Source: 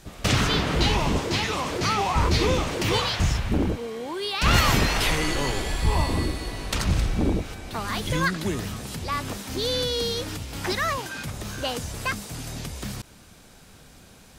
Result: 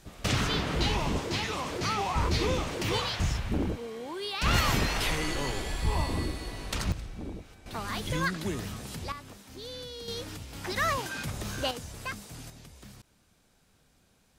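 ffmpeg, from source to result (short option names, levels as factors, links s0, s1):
-af "asetnsamples=n=441:p=0,asendcmd='6.92 volume volume -16dB;7.66 volume volume -5.5dB;9.12 volume volume -15.5dB;10.08 volume volume -8dB;10.76 volume volume -2dB;11.71 volume volume -9dB;12.5 volume volume -16dB',volume=0.501"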